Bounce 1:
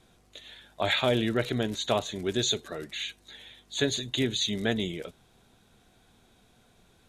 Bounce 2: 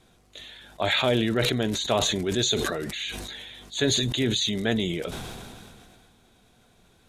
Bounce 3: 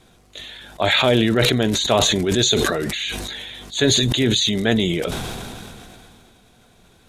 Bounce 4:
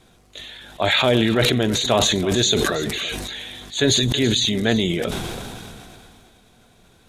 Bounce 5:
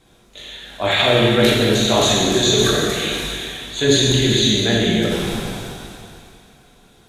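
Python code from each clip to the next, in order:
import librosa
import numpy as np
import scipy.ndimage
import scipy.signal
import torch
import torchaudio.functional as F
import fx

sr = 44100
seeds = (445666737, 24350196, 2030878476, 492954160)

y1 = fx.sustainer(x, sr, db_per_s=25.0)
y1 = y1 * librosa.db_to_amplitude(1.5)
y2 = fx.sustainer(y1, sr, db_per_s=22.0)
y2 = y2 * librosa.db_to_amplitude(6.0)
y3 = y2 + 10.0 ** (-14.5 / 20.0) * np.pad(y2, (int(328 * sr / 1000.0), 0))[:len(y2)]
y3 = y3 * librosa.db_to_amplitude(-1.0)
y4 = fx.rev_plate(y3, sr, seeds[0], rt60_s=2.0, hf_ratio=0.95, predelay_ms=0, drr_db=-5.0)
y4 = y4 * librosa.db_to_amplitude(-3.0)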